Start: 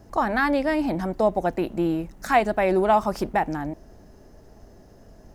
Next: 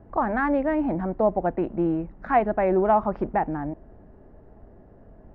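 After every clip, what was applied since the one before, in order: Bessel low-pass 1400 Hz, order 4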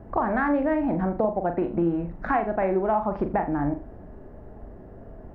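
compressor, threshold -27 dBFS, peak gain reduction 12 dB; on a send: flutter echo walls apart 7.1 m, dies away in 0.32 s; on the sum: gain +5.5 dB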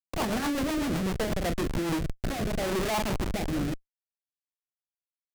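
Schmitt trigger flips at -28 dBFS; rotary speaker horn 8 Hz, later 0.7 Hz, at 1.51

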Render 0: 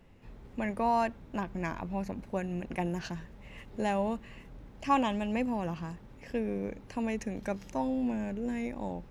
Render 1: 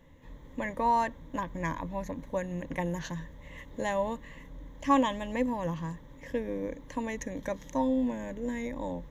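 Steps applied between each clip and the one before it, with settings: ripple EQ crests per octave 1.1, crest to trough 12 dB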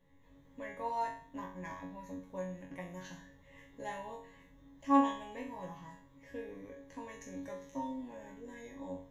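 resonator bank F#2 fifth, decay 0.48 s; gain +3.5 dB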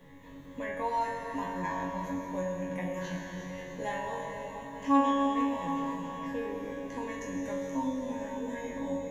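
reverse delay 0.27 s, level -12 dB; plate-style reverb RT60 3.9 s, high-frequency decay 0.95×, DRR 0.5 dB; three-band squash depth 40%; gain +5.5 dB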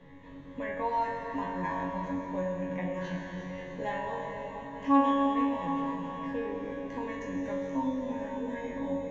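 air absorption 150 m; gain +1.5 dB

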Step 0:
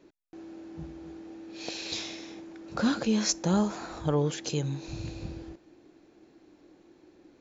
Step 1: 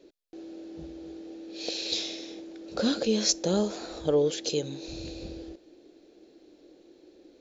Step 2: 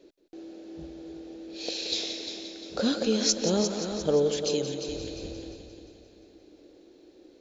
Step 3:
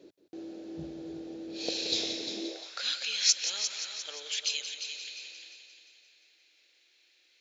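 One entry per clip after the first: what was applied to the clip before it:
graphic EQ 125/500/1000/2000/4000 Hz -11/+9/-9/-3/+7 dB
multi-head echo 0.175 s, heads first and second, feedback 50%, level -11 dB
high-pass sweep 110 Hz -> 2300 Hz, 2.26–2.82

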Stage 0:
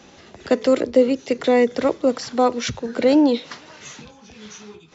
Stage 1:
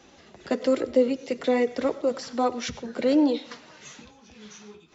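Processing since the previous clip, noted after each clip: reverb RT60 0.40 s, pre-delay 60 ms, DRR 16 dB; flange 1.2 Hz, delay 2.3 ms, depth 3.7 ms, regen -45%; gain -2.5 dB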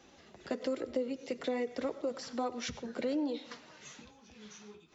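compressor 3:1, threshold -26 dBFS, peak gain reduction 9 dB; gain -6 dB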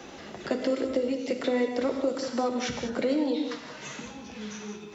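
non-linear reverb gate 0.22 s flat, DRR 4.5 dB; three-band squash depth 40%; gain +6.5 dB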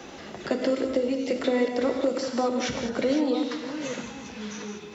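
reverse delay 0.581 s, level -10 dB; gain +2 dB

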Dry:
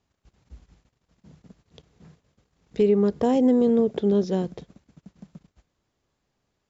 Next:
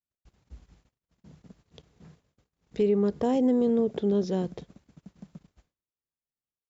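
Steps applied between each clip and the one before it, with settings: expander -59 dBFS; in parallel at -1.5 dB: limiter -22 dBFS, peak gain reduction 10.5 dB; on the sum: gain -6.5 dB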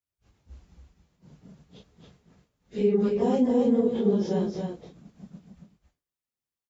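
phase scrambler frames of 0.1 s; echo 0.276 s -4.5 dB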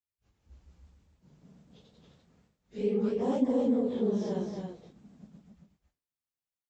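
echoes that change speed 0.189 s, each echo +1 st, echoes 2; gain -8 dB

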